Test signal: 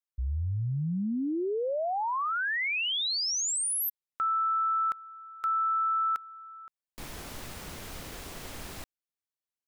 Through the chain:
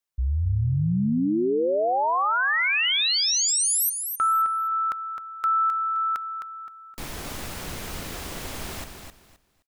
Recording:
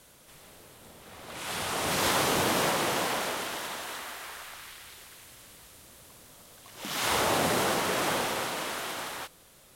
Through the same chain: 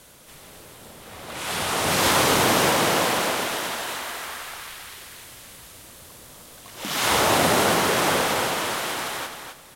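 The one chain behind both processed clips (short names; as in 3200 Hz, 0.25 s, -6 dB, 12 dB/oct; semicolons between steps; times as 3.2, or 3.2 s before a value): feedback echo 0.261 s, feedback 22%, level -7 dB; gain +6.5 dB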